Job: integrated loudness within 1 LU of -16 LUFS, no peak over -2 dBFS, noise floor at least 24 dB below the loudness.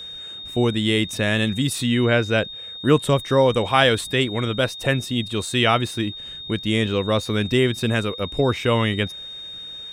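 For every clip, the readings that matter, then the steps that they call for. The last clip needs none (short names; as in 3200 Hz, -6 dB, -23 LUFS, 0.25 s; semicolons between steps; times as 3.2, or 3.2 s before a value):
steady tone 3700 Hz; tone level -33 dBFS; loudness -21.0 LUFS; peak -2.5 dBFS; loudness target -16.0 LUFS
-> notch 3700 Hz, Q 30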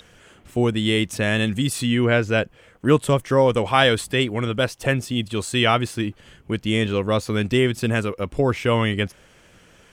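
steady tone none; loudness -21.5 LUFS; peak -2.5 dBFS; loudness target -16.0 LUFS
-> gain +5.5 dB; limiter -2 dBFS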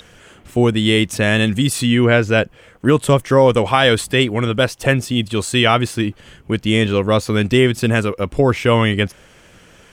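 loudness -16.5 LUFS; peak -2.0 dBFS; noise floor -47 dBFS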